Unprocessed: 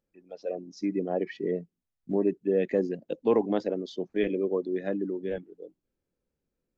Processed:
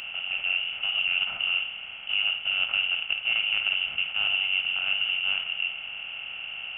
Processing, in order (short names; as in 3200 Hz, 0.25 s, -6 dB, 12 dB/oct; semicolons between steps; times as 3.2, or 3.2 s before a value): per-bin compression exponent 0.2; flutter echo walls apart 9.1 m, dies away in 0.36 s; inverted band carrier 3200 Hz; gain -7 dB